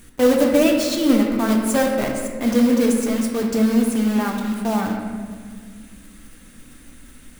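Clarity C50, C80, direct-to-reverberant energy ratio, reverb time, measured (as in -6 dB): 3.5 dB, 5.0 dB, 1.0 dB, 1.8 s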